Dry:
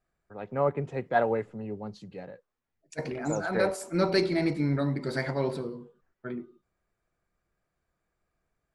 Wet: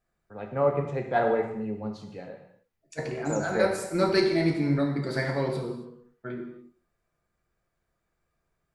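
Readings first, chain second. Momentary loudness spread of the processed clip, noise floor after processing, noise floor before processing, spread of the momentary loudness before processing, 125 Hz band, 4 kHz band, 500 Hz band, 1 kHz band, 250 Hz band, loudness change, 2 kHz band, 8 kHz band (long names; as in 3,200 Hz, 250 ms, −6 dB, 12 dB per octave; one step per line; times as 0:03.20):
17 LU, −79 dBFS, −82 dBFS, 18 LU, +1.5 dB, +2.0 dB, +2.5 dB, +1.5 dB, +2.0 dB, +2.0 dB, +1.5 dB, +2.0 dB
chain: reverb whose tail is shaped and stops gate 310 ms falling, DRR 2.5 dB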